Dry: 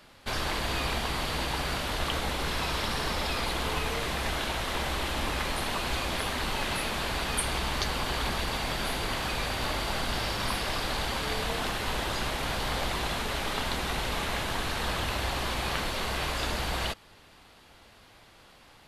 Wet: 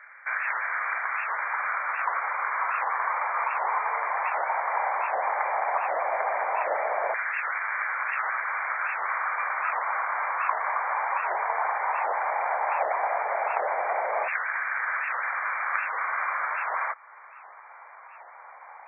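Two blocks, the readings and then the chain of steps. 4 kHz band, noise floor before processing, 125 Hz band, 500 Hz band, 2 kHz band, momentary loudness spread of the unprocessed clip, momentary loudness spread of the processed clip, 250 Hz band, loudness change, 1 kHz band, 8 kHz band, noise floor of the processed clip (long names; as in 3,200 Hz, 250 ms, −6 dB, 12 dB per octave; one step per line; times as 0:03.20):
below −40 dB, −56 dBFS, below −40 dB, +2.0 dB, +5.5 dB, 1 LU, 3 LU, below −25 dB, +3.0 dB, +8.0 dB, below −40 dB, −48 dBFS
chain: auto-filter high-pass saw down 0.14 Hz 620–1,600 Hz
low shelf with overshoot 380 Hz −12.5 dB, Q 1.5
in parallel at +1 dB: downward compressor, threshold −41 dBFS, peak gain reduction 18.5 dB
on the sum: brick-wall band-pass 100–2,400 Hz
wow of a warped record 78 rpm, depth 250 cents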